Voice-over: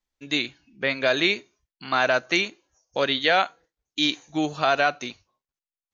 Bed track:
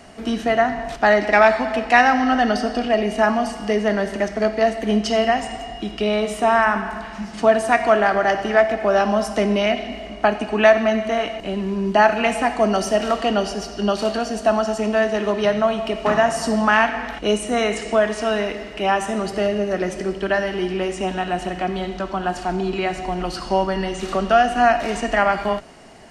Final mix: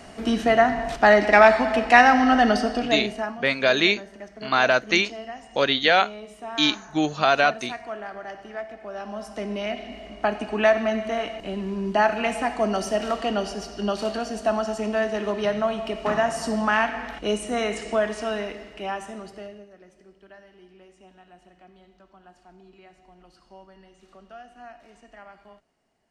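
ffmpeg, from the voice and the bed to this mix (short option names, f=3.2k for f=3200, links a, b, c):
-filter_complex "[0:a]adelay=2600,volume=2dB[a];[1:a]volume=13dB,afade=t=out:st=2.48:d=0.9:silence=0.11885,afade=t=in:st=8.94:d=1.47:silence=0.223872,afade=t=out:st=18.05:d=1.66:silence=0.0707946[b];[a][b]amix=inputs=2:normalize=0"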